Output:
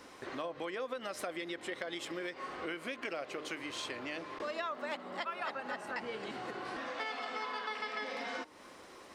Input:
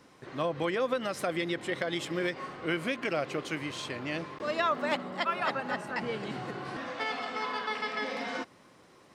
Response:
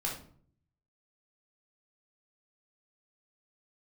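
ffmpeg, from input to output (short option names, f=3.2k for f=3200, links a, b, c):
-af "bandreject=f=153:t=h:w=4,bandreject=f=306:t=h:w=4,bandreject=f=459:t=h:w=4,bandreject=f=612:t=h:w=4,bandreject=f=765:t=h:w=4,bandreject=f=918:t=h:w=4,bandreject=f=1.071k:t=h:w=4,acompressor=threshold=-44dB:ratio=4,equalizer=f=140:w=1.3:g=-13.5,volume=6dB"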